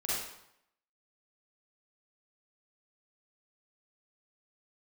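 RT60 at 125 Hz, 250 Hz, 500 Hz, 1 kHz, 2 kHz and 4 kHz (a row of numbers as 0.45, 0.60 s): 0.75, 0.75, 0.75, 0.80, 0.70, 0.65 s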